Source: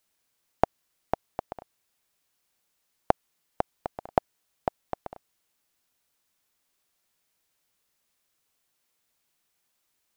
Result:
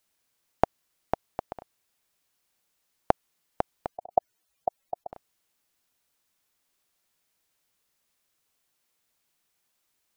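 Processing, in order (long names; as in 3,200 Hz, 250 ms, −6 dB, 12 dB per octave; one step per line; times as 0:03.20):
0:03.87–0:05.13: expanding power law on the bin magnitudes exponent 2.6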